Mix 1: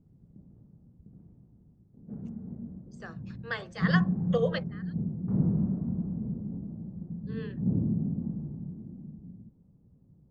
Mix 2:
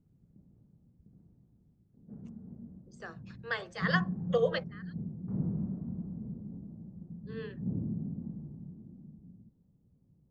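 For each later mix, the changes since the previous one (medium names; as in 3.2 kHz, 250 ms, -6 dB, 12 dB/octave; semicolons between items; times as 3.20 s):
background -7.0 dB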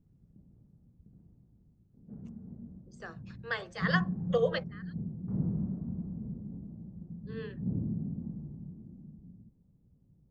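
background: add bass shelf 70 Hz +8 dB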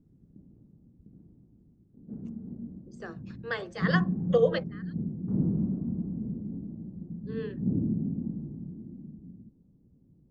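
master: add peaking EQ 300 Hz +10.5 dB 1.3 oct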